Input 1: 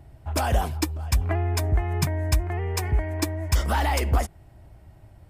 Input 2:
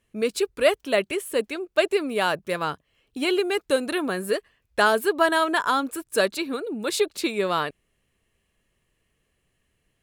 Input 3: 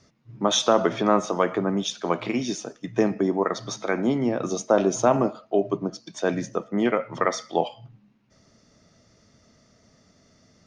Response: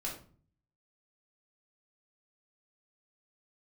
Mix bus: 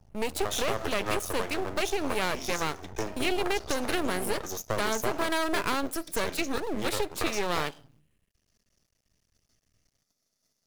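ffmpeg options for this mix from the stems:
-filter_complex "[0:a]alimiter=limit=0.106:level=0:latency=1:release=21,lowpass=f=1300:w=0.5412,lowpass=f=1300:w=1.3066,volume=0.316,asplit=2[s0][s1];[s1]volume=0.501[s2];[1:a]agate=range=0.355:threshold=0.00562:ratio=16:detection=peak,bass=f=250:g=10,treble=f=4000:g=-7,alimiter=limit=0.178:level=0:latency=1:release=26,volume=1.19,asplit=2[s3][s4];[s4]volume=0.1[s5];[2:a]bass=f=250:g=-5,treble=f=4000:g=4,agate=range=0.126:threshold=0.00158:ratio=16:detection=peak,volume=0.596[s6];[3:a]atrim=start_sample=2205[s7];[s2][s5]amix=inputs=2:normalize=0[s8];[s8][s7]afir=irnorm=-1:irlink=0[s9];[s0][s3][s6][s9]amix=inputs=4:normalize=0,acrossover=split=260|2800[s10][s11][s12];[s10]acompressor=threshold=0.00794:ratio=4[s13];[s11]acompressor=threshold=0.0708:ratio=4[s14];[s12]acompressor=threshold=0.00794:ratio=4[s15];[s13][s14][s15]amix=inputs=3:normalize=0,aeval=exprs='max(val(0),0)':c=same,crystalizer=i=2.5:c=0"

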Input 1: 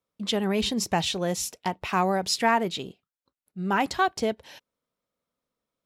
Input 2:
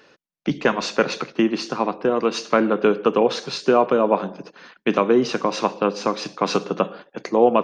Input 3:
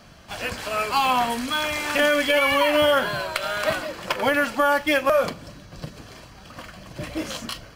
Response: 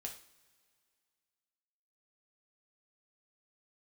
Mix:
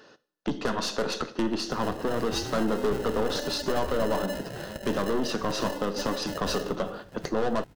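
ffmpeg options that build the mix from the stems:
-filter_complex "[1:a]aeval=exprs='(tanh(11.2*val(0)+0.45)-tanh(0.45))/11.2':c=same,equalizer=f=2300:t=o:w=0.31:g=-12.5,volume=0.944,asplit=2[s0][s1];[s1]volume=0.562[s2];[2:a]acompressor=threshold=0.0631:ratio=6,acrusher=samples=38:mix=1:aa=0.000001,adelay=1400,volume=0.398[s3];[s0]acompressor=threshold=0.0398:ratio=6,volume=1[s4];[3:a]atrim=start_sample=2205[s5];[s2][s5]afir=irnorm=-1:irlink=0[s6];[s3][s4][s6]amix=inputs=3:normalize=0"

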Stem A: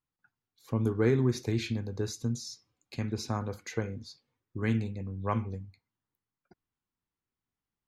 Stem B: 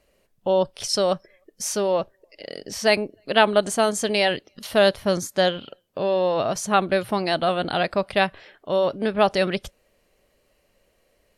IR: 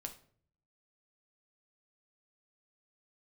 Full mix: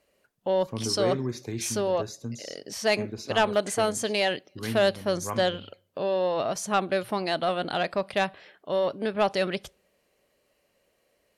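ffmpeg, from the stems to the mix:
-filter_complex "[0:a]volume=0.75,asplit=2[s0][s1];[s1]volume=0.2[s2];[1:a]volume=0.596,asplit=2[s3][s4];[s4]volume=0.168[s5];[2:a]atrim=start_sample=2205[s6];[s2][s5]amix=inputs=2:normalize=0[s7];[s7][s6]afir=irnorm=-1:irlink=0[s8];[s0][s3][s8]amix=inputs=3:normalize=0,highpass=f=150:p=1,asoftclip=type=tanh:threshold=0.224"

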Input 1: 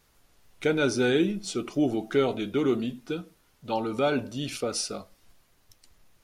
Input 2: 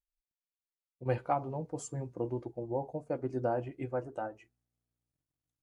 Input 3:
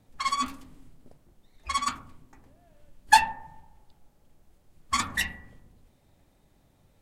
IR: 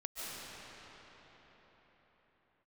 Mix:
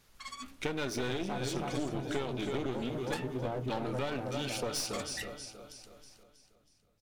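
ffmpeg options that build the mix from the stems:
-filter_complex "[0:a]equalizer=f=3900:w=0.43:g=3.5,volume=0.75,asplit=2[s0][s1];[s1]volume=0.316[s2];[1:a]lowshelf=f=170:g=10.5,volume=0.708,asplit=2[s3][s4];[s4]volume=0.631[s5];[2:a]equalizer=f=1000:t=o:w=0.58:g=-9.5,volume=0.237[s6];[s2][s5]amix=inputs=2:normalize=0,aecho=0:1:320|640|960|1280|1600|1920|2240:1|0.49|0.24|0.118|0.0576|0.0282|0.0138[s7];[s0][s3][s6][s7]amix=inputs=4:normalize=0,aeval=exprs='clip(val(0),-1,0.0211)':c=same,acompressor=threshold=0.0316:ratio=6"

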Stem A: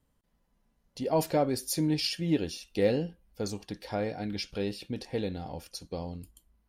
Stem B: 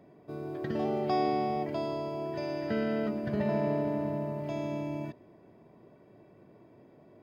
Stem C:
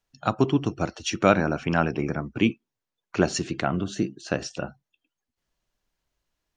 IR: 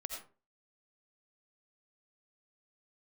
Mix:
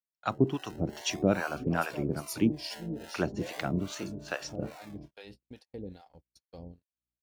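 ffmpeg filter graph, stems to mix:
-filter_complex "[0:a]acompressor=threshold=0.0398:ratio=6,aeval=exprs='val(0)+0.00398*(sin(2*PI*60*n/s)+sin(2*PI*2*60*n/s)/2+sin(2*PI*3*60*n/s)/3+sin(2*PI*4*60*n/s)/4+sin(2*PI*5*60*n/s)/5)':c=same,adelay=600,volume=0.562[s0];[1:a]acrusher=samples=30:mix=1:aa=0.000001:lfo=1:lforange=18:lforate=0.41,volume=0.299[s1];[2:a]volume=0.794[s2];[s0][s1][s2]amix=inputs=3:normalize=0,agate=range=0.00794:threshold=0.00891:ratio=16:detection=peak,acrossover=split=590[s3][s4];[s3]aeval=exprs='val(0)*(1-1/2+1/2*cos(2*PI*2.4*n/s))':c=same[s5];[s4]aeval=exprs='val(0)*(1-1/2-1/2*cos(2*PI*2.4*n/s))':c=same[s6];[s5][s6]amix=inputs=2:normalize=0"

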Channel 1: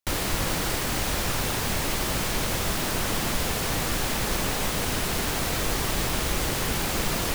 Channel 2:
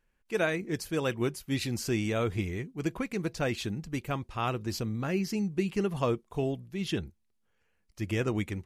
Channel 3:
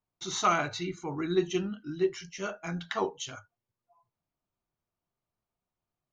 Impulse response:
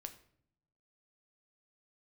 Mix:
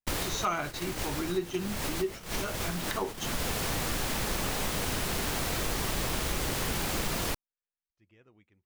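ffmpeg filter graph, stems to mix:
-filter_complex "[0:a]volume=1[s0];[1:a]lowpass=3900,lowshelf=f=400:g=-5.5,volume=0.237[s1];[2:a]volume=1.19,asplit=2[s2][s3];[s3]apad=whole_len=323927[s4];[s0][s4]sidechaincompress=threshold=0.0141:ratio=8:attack=34:release=308[s5];[s5][s1][s2]amix=inputs=3:normalize=0,agate=range=0.158:threshold=0.0282:ratio=16:detection=peak,acompressor=threshold=0.0282:ratio=2"

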